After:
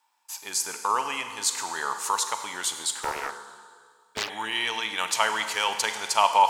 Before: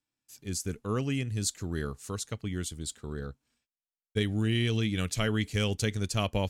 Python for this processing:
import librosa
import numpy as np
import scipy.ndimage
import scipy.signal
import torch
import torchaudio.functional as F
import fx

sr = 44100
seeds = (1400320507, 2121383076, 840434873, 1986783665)

p1 = fx.over_compress(x, sr, threshold_db=-39.0, ratio=-1.0)
p2 = x + (p1 * 10.0 ** (-2.0 / 20.0))
p3 = fx.highpass_res(p2, sr, hz=910.0, q=11.0)
p4 = fx.rev_schroeder(p3, sr, rt60_s=1.9, comb_ms=33, drr_db=7.5)
p5 = fx.doppler_dist(p4, sr, depth_ms=0.73, at=(3.0, 4.3))
y = p5 * 10.0 ** (4.5 / 20.0)